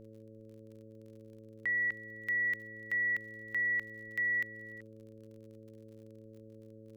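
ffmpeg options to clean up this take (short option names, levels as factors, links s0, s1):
-af "adeclick=t=4,bandreject=f=109.8:t=h:w=4,bandreject=f=219.6:t=h:w=4,bandreject=f=329.4:t=h:w=4,bandreject=f=439.2:t=h:w=4,bandreject=f=549:t=h:w=4,agate=range=0.0891:threshold=0.00562"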